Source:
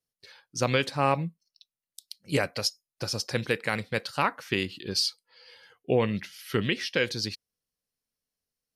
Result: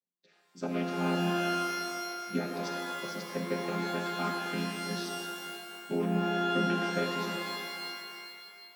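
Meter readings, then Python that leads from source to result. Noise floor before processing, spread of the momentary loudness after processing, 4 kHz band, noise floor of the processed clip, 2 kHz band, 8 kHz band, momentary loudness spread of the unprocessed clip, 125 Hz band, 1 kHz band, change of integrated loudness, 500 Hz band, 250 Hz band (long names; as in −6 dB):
below −85 dBFS, 11 LU, −6.5 dB, −66 dBFS, −5.0 dB, −6.5 dB, 11 LU, −4.0 dB, −0.5 dB, −4.0 dB, −4.0 dB, +1.0 dB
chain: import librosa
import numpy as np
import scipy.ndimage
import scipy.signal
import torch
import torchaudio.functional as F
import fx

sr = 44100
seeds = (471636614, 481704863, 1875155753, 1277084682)

y = fx.chord_vocoder(x, sr, chord='minor triad', root=53)
y = fx.rev_shimmer(y, sr, seeds[0], rt60_s=2.2, semitones=12, shimmer_db=-2, drr_db=2.5)
y = F.gain(torch.from_numpy(y), -7.5).numpy()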